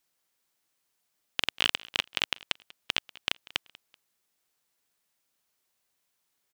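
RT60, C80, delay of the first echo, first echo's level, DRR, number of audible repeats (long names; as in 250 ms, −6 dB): no reverb audible, no reverb audible, 191 ms, −22.0 dB, no reverb audible, 2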